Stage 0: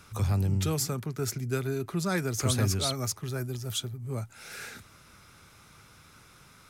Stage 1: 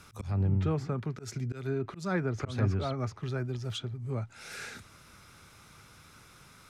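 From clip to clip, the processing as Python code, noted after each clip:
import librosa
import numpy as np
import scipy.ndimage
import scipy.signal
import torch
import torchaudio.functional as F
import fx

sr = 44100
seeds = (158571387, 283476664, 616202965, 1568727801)

y = fx.auto_swell(x, sr, attack_ms=200.0)
y = fx.env_lowpass_down(y, sr, base_hz=1700.0, full_db=-26.5)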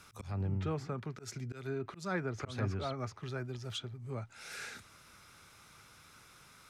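y = fx.low_shelf(x, sr, hz=410.0, db=-6.0)
y = F.gain(torch.from_numpy(y), -2.0).numpy()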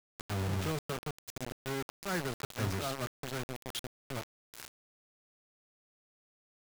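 y = fx.quant_dither(x, sr, seeds[0], bits=6, dither='none')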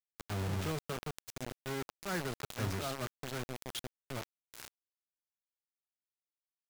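y = fx.sustainer(x, sr, db_per_s=140.0)
y = F.gain(torch.from_numpy(y), -2.0).numpy()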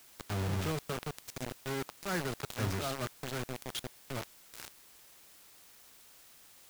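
y = fx.quant_dither(x, sr, seeds[1], bits=10, dither='triangular')
y = F.gain(torch.from_numpy(y), 2.0).numpy()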